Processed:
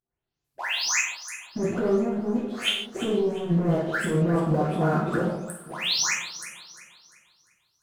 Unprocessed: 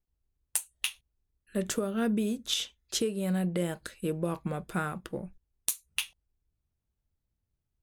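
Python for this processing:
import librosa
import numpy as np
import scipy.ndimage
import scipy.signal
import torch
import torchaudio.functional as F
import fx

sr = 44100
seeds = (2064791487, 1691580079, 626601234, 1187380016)

y = fx.spec_delay(x, sr, highs='late', ms=442)
y = fx.env_lowpass_down(y, sr, base_hz=550.0, full_db=-31.5)
y = fx.highpass(y, sr, hz=280.0, slope=6)
y = fx.high_shelf(y, sr, hz=6600.0, db=5.5)
y = fx.leveller(y, sr, passes=2)
y = fx.over_compress(y, sr, threshold_db=-32.0, ratio=-0.5)
y = fx.echo_alternate(y, sr, ms=174, hz=1100.0, feedback_pct=62, wet_db=-10)
y = fx.rev_gated(y, sr, seeds[0], gate_ms=190, shape='falling', drr_db=-3.5)
y = F.gain(torch.from_numpy(y), 6.0).numpy()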